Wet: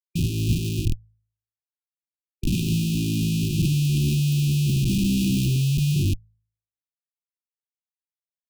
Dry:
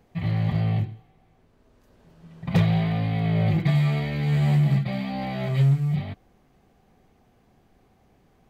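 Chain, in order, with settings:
comparator with hysteresis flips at −31.5 dBFS
linear-phase brick-wall band-stop 380–2,400 Hz
hum removal 53.67 Hz, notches 3
expander for the loud parts 1.5 to 1, over −39 dBFS
level +6.5 dB

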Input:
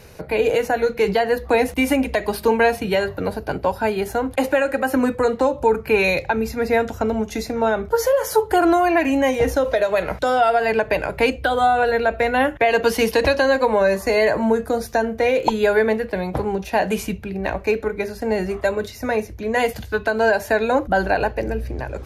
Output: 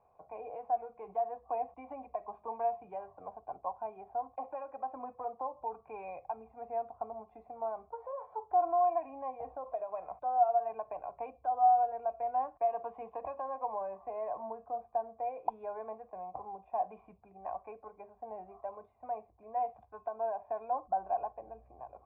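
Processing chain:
0:17.01–0:17.72: dynamic equaliser 1,500 Hz, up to +5 dB, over −40 dBFS, Q 1.3
formant resonators in series a
level −6.5 dB

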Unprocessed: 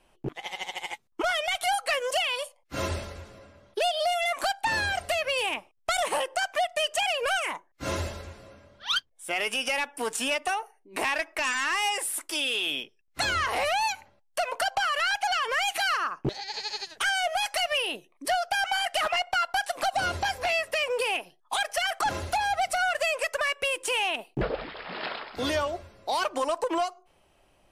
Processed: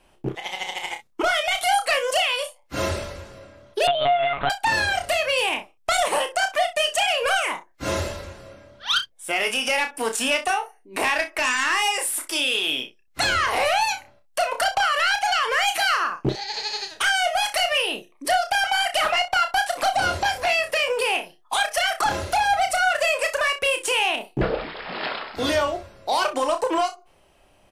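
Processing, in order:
ambience of single reflections 31 ms −7 dB, 62 ms −14.5 dB
0:03.87–0:04.50: one-pitch LPC vocoder at 8 kHz 140 Hz
level +4.5 dB

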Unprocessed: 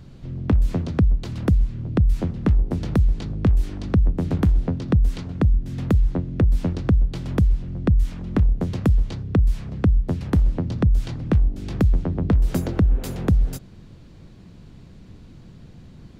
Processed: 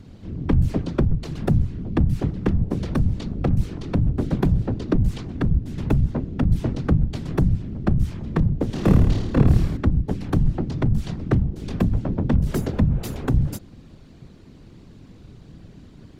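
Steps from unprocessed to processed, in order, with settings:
gain into a clipping stage and back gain 14 dB
0:08.66–0:09.77: flutter between parallel walls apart 4.6 metres, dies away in 0.93 s
random phases in short frames

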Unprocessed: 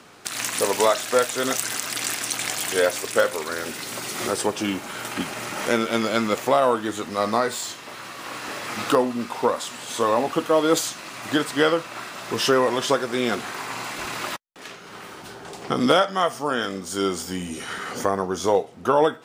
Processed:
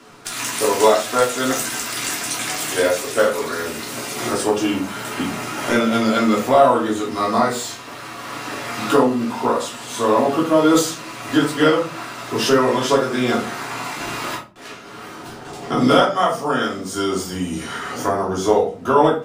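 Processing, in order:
rectangular room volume 200 cubic metres, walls furnished, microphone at 3.1 metres
level −3 dB

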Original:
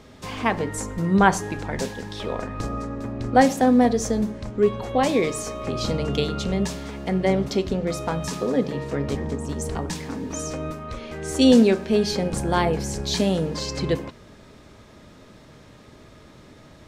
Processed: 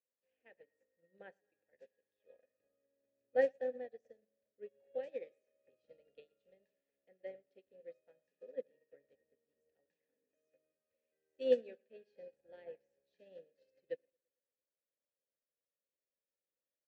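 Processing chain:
formant filter e
repeating echo 112 ms, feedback 56%, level −14.5 dB
expander for the loud parts 2.5 to 1, over −42 dBFS
level −5.5 dB

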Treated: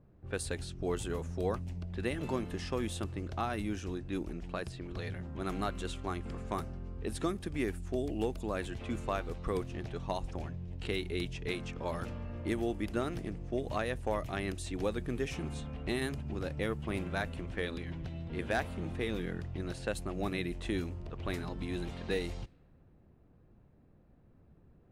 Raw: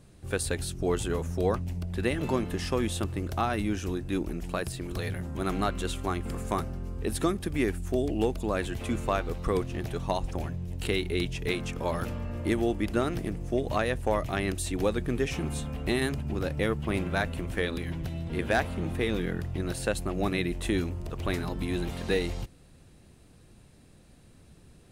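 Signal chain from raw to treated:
low-pass that shuts in the quiet parts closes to 1,100 Hz, open at −24.5 dBFS
level −6.5 dB

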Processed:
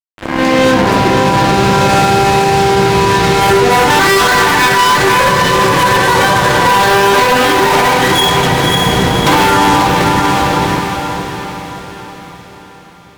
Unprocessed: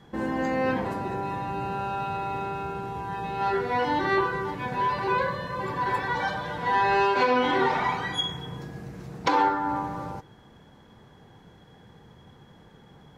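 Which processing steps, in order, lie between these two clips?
fade in at the beginning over 1.41 s
0:03.90–0:04.97: flat-topped bell 1,600 Hz +12.5 dB
in parallel at −2 dB: downward compressor, threshold −33 dBFS, peak gain reduction 20 dB
on the sum: fuzz pedal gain 31 dB, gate −35 dBFS
feedback delay with all-pass diffusion 567 ms, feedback 47%, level −4 dB
on a send at −9 dB: convolution reverb RT60 0.45 s, pre-delay 3 ms
on the sum: boost into a limiter +11 dB
level −1 dB

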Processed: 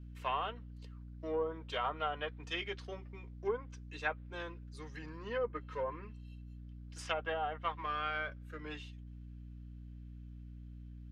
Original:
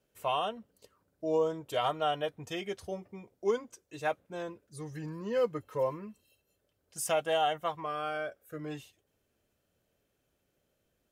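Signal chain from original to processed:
gain on one half-wave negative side −3 dB
treble cut that deepens with the level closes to 1,000 Hz, closed at −26 dBFS
three-way crossover with the lows and the highs turned down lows −22 dB, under 400 Hz, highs −21 dB, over 4,700 Hz
mains hum 60 Hz, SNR 15 dB
parametric band 650 Hz −13.5 dB 1.1 octaves
level +6 dB

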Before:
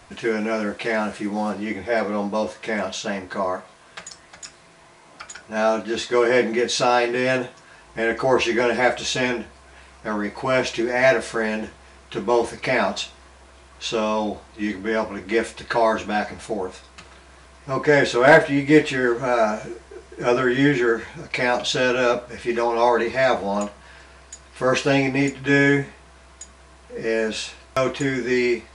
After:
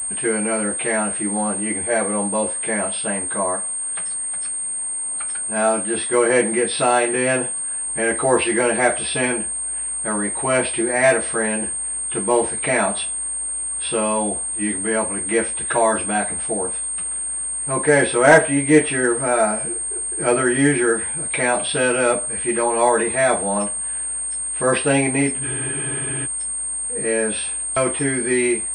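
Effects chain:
hearing-aid frequency compression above 3,100 Hz 1.5 to 1
frozen spectrum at 0:25.45, 0.79 s
switching amplifier with a slow clock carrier 8,600 Hz
level +1 dB

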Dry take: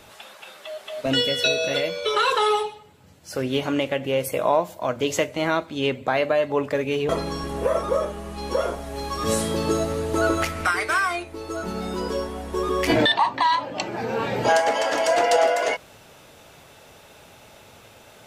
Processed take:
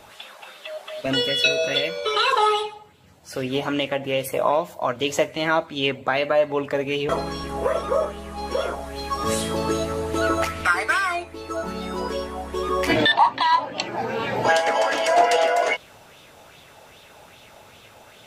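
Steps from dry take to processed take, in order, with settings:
auto-filter bell 2.5 Hz 720–3,600 Hz +8 dB
level −1.5 dB

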